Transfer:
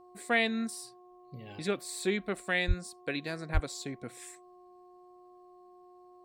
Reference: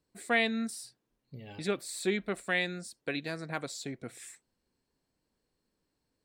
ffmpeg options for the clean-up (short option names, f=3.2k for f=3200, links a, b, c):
-filter_complex "[0:a]bandreject=f=360.2:t=h:w=4,bandreject=f=720.4:t=h:w=4,bandreject=f=1.0806k:t=h:w=4,asplit=3[a][b][c];[a]afade=t=out:st=2.67:d=0.02[d];[b]highpass=f=140:w=0.5412,highpass=f=140:w=1.3066,afade=t=in:st=2.67:d=0.02,afade=t=out:st=2.79:d=0.02[e];[c]afade=t=in:st=2.79:d=0.02[f];[d][e][f]amix=inputs=3:normalize=0,asplit=3[g][h][i];[g]afade=t=out:st=3.53:d=0.02[j];[h]highpass=f=140:w=0.5412,highpass=f=140:w=1.3066,afade=t=in:st=3.53:d=0.02,afade=t=out:st=3.65:d=0.02[k];[i]afade=t=in:st=3.65:d=0.02[l];[j][k][l]amix=inputs=3:normalize=0"